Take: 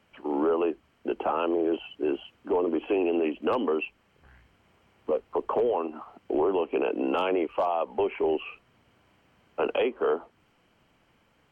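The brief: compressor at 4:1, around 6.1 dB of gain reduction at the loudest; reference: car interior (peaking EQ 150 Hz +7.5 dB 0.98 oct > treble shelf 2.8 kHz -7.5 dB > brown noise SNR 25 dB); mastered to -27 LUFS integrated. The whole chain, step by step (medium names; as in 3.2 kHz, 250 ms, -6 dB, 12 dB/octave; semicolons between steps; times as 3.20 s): compression 4:1, threshold -29 dBFS; peaking EQ 150 Hz +7.5 dB 0.98 oct; treble shelf 2.8 kHz -7.5 dB; brown noise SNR 25 dB; trim +6.5 dB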